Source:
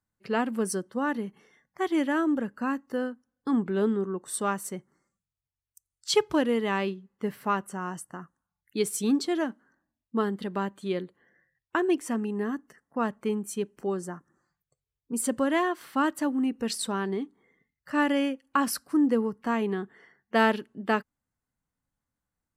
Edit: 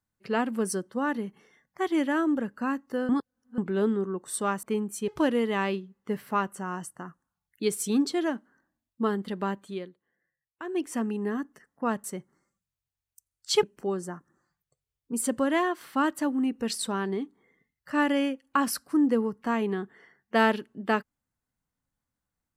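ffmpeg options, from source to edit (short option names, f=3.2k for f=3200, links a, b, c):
-filter_complex "[0:a]asplit=9[a][b][c][d][e][f][g][h][i];[a]atrim=end=3.092[j];[b]atrim=start=3.088:end=3.582,asetpts=PTS-STARTPTS,areverse[k];[c]atrim=start=3.578:end=4.632[l];[d]atrim=start=13.178:end=13.632[m];[e]atrim=start=6.218:end=11.04,asetpts=PTS-STARTPTS,afade=t=out:st=4.502:d=0.32:silence=0.211349[n];[f]atrim=start=11.04:end=11.76,asetpts=PTS-STARTPTS,volume=-13.5dB[o];[g]atrim=start=11.76:end=13.182,asetpts=PTS-STARTPTS,afade=t=in:d=0.32:silence=0.211349[p];[h]atrim=start=4.628:end=6.222[q];[i]atrim=start=13.628[r];[j][k]acrossfade=d=0.004:c1=hsin:c2=hsin[s];[s][l]acrossfade=d=0.004:c1=hsin:c2=hsin[t];[t][m]acrossfade=d=0.004:c1=hsin:c2=hsin[u];[n][o][p]concat=n=3:v=0:a=1[v];[u][v]acrossfade=d=0.004:c1=hsin:c2=hsin[w];[w][q]acrossfade=d=0.004:c1=hsin:c2=hsin[x];[x][r]acrossfade=d=0.004:c1=hsin:c2=hsin"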